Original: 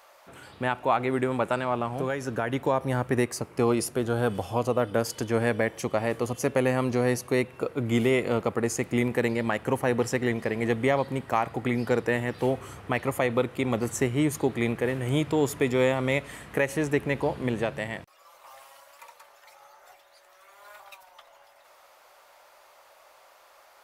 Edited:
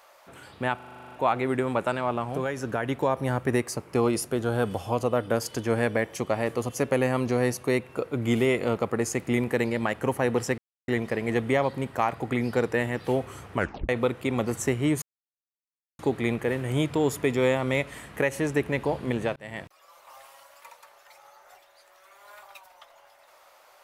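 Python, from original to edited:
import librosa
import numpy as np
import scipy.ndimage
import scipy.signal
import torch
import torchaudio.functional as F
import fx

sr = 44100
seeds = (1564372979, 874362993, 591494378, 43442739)

y = fx.edit(x, sr, fx.stutter(start_s=0.76, slice_s=0.04, count=10),
    fx.insert_silence(at_s=10.22, length_s=0.3),
    fx.tape_stop(start_s=12.89, length_s=0.34),
    fx.insert_silence(at_s=14.36, length_s=0.97),
    fx.fade_in_span(start_s=17.73, length_s=0.25), tone=tone)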